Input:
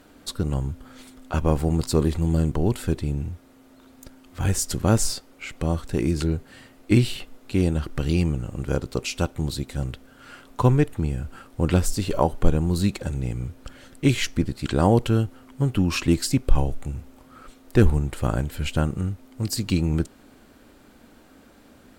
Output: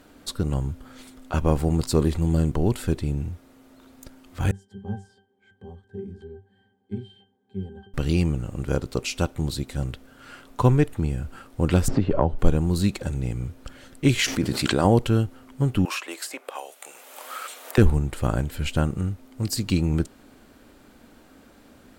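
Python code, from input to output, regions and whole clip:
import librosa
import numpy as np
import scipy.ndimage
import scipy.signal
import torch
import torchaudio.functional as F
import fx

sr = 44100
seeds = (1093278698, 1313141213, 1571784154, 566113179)

y = fx.chain(x, sr, fx.highpass(hz=130.0, slope=12),
    fx.peak_eq(hz=8800.0, db=7.0, octaves=0.87),
    fx.octave_resonator(note='G', decay_s=0.23), at=(4.51, 7.94))
y = fx.chain(y, sr, fx.spacing_loss(db_at_10k=36),
    fx.band_squash(depth_pct=100), at=(11.88, 12.39))
y = fx.chain(y, sr, fx.highpass(hz=220.0, slope=6),
    fx.env_flatten(amount_pct=70), at=(14.19, 14.85))
y = fx.chain(y, sr, fx.highpass(hz=540.0, slope=24),
    fx.peak_eq(hz=4900.0, db=-6.0, octaves=0.94),
    fx.band_squash(depth_pct=100), at=(15.85, 17.78))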